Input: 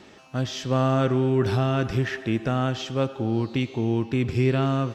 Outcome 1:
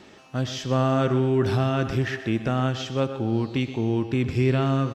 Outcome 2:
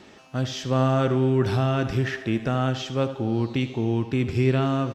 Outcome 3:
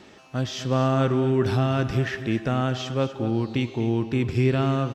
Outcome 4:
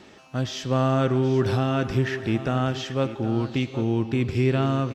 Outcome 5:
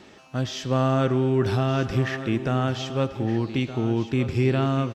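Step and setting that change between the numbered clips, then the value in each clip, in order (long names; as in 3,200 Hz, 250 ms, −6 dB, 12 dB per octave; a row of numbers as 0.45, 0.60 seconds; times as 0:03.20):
single-tap delay, delay time: 125, 77, 242, 773, 1,217 milliseconds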